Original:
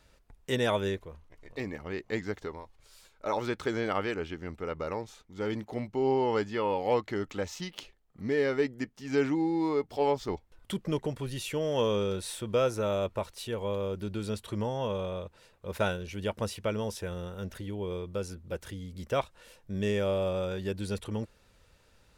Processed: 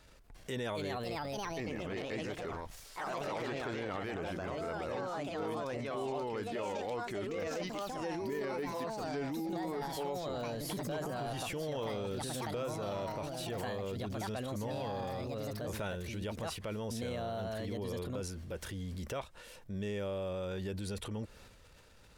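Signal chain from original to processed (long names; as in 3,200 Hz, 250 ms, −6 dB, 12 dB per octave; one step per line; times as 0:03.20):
delay with pitch and tempo change per echo 345 ms, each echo +3 semitones, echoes 3
downward compressor 5 to 1, threshold −38 dBFS, peak gain reduction 16 dB
transient designer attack −4 dB, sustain +7 dB
level +2 dB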